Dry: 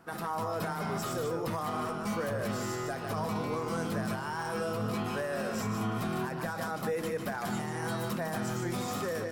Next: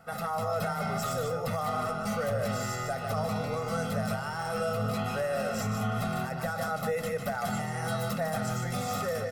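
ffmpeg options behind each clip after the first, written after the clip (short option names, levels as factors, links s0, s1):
-af "aecho=1:1:1.5:0.91"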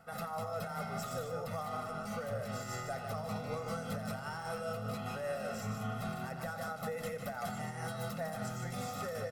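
-filter_complex "[0:a]alimiter=level_in=1.06:limit=0.0631:level=0:latency=1:release=167,volume=0.944,tremolo=f=5.1:d=0.37,asplit=4[s0][s1][s2][s3];[s1]adelay=87,afreqshift=32,volume=0.178[s4];[s2]adelay=174,afreqshift=64,volume=0.055[s5];[s3]adelay=261,afreqshift=96,volume=0.0172[s6];[s0][s4][s5][s6]amix=inputs=4:normalize=0,volume=0.631"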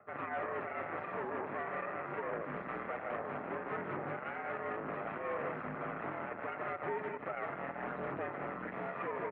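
-af "aphaser=in_gain=1:out_gain=1:delay=4.9:decay=0.33:speed=0.37:type=triangular,aeval=exprs='0.0501*(cos(1*acos(clip(val(0)/0.0501,-1,1)))-cos(1*PI/2))+0.02*(cos(6*acos(clip(val(0)/0.0501,-1,1)))-cos(6*PI/2))':c=same,highpass=f=240:t=q:w=0.5412,highpass=f=240:t=q:w=1.307,lowpass=f=2300:t=q:w=0.5176,lowpass=f=2300:t=q:w=0.7071,lowpass=f=2300:t=q:w=1.932,afreqshift=-64,volume=0.75"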